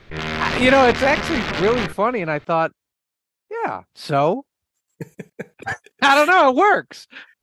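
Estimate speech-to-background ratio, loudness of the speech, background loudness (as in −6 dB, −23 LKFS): 6.5 dB, −18.0 LKFS, −24.5 LKFS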